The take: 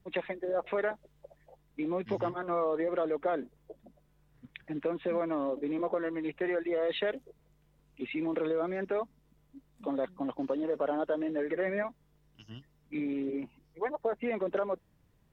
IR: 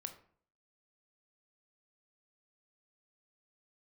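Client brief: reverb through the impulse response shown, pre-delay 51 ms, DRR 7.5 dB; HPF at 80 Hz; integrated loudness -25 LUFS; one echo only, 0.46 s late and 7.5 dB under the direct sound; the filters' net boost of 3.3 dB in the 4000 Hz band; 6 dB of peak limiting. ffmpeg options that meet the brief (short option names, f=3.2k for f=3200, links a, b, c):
-filter_complex "[0:a]highpass=80,equalizer=f=4k:t=o:g=4.5,alimiter=level_in=0.5dB:limit=-24dB:level=0:latency=1,volume=-0.5dB,aecho=1:1:460:0.422,asplit=2[a][b];[1:a]atrim=start_sample=2205,adelay=51[c];[b][c]afir=irnorm=-1:irlink=0,volume=-4dB[d];[a][d]amix=inputs=2:normalize=0,volume=9dB"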